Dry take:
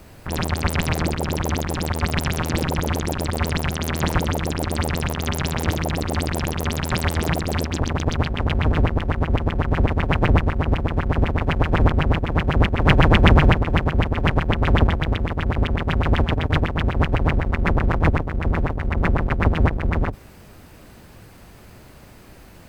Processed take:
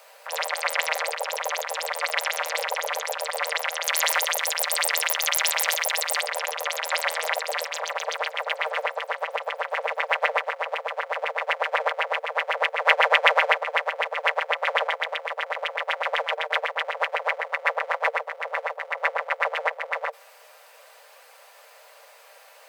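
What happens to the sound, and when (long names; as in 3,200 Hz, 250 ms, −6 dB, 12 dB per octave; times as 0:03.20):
0:03.87–0:06.21: spectral tilt +3 dB per octave
0:07.04–0:07.56: delay throw 520 ms, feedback 65%, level −16 dB
whole clip: Chebyshev high-pass filter 460 Hz, order 10; dynamic equaliser 2,000 Hz, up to +6 dB, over −42 dBFS, Q 4.5; comb filter 5.1 ms, depth 37%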